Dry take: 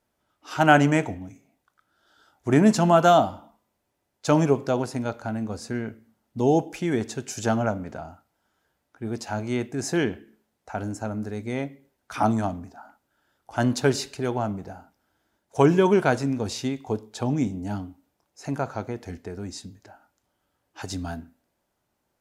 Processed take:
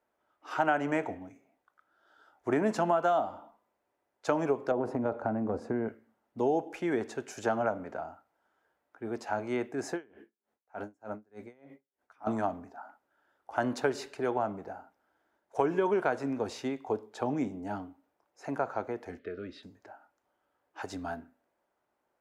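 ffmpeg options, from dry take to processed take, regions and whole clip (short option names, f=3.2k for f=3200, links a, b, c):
-filter_complex "[0:a]asettb=1/sr,asplit=3[a][b][c];[a]atrim=end=4.714[d];[b]atrim=start=4.71:end=5.88,asetpts=PTS-STARTPTS,afade=t=in:d=0.004:c=qsin,afade=t=out:st=1.166:d=0.004:c=qsin,tiltshelf=f=1.4k:g=10,acompressor=threshold=-19dB:ratio=4:attack=3.2:release=140:knee=1:detection=peak[e];[c]atrim=start=5.876[f];[d][e]acrossfade=d=0.004:c1=hsin:c2=qsin[g];[g][f]acrossfade=d=0.004:c1=qsin:c2=hsin,asettb=1/sr,asplit=3[h][i][j];[h]atrim=end=9.914[k];[i]atrim=start=9.91:end=12.27,asetpts=PTS-STARTPTS,afade=t=in:d=0.004:c=qsin,afade=t=out:st=2.356:d=0.004:c=qsin,asplit=2[l][m];[m]adelay=15,volume=-13.5dB[n];[l][n]amix=inputs=2:normalize=0,atrim=end_sample=104076,aeval=exprs='val(0)*pow(10,-33*(0.5-0.5*cos(2*PI*3.3*n/s))/20)':c=same[o];[j]atrim=start=12.266[p];[k][o]acrossfade=d=0.004:c1=hsin:c2=qsin[q];[q][p]acrossfade=d=0.004:c1=qsin:c2=hsin,asettb=1/sr,asplit=3[r][s][t];[r]atrim=end=19.194[u];[s]atrim=start=19.19:end=19.63,asetpts=PTS-STARTPTS,afade=t=in:d=0.004:c=qsin,afade=t=out:st=0.436:d=0.004:c=qsin,asuperstop=centerf=870:order=12:qfactor=1.7,highshelf=f=5k:t=q:w=3:g=-13.5[v];[t]atrim=start=19.626[w];[u][v]acrossfade=d=0.004:c1=hsin:c2=qsin[x];[x][w]acrossfade=d=0.004:c1=qsin:c2=hsin,acrossover=split=310 2200:gain=0.178 1 0.224[y][z][aa];[y][z][aa]amix=inputs=3:normalize=0,acompressor=threshold=-24dB:ratio=5"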